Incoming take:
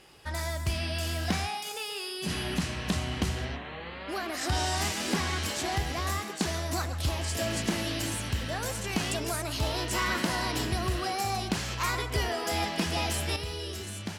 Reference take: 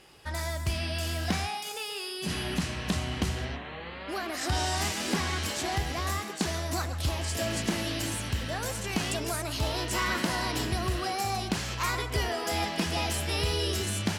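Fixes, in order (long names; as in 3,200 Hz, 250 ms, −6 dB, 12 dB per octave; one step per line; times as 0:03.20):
level correction +7.5 dB, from 0:13.36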